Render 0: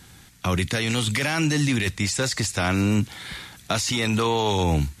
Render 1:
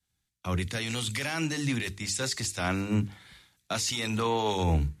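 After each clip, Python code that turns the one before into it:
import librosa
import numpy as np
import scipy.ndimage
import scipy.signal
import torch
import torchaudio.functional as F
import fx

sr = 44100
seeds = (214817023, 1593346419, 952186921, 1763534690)

y = fx.hum_notches(x, sr, base_hz=50, count=9)
y = fx.band_widen(y, sr, depth_pct=100)
y = y * librosa.db_to_amplitude(-6.0)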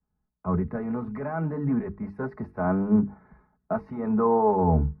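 y = scipy.signal.sosfilt(scipy.signal.cheby2(4, 50, 3000.0, 'lowpass', fs=sr, output='sos'), x)
y = y + 0.76 * np.pad(y, (int(4.7 * sr / 1000.0), 0))[:len(y)]
y = y * librosa.db_to_amplitude(4.0)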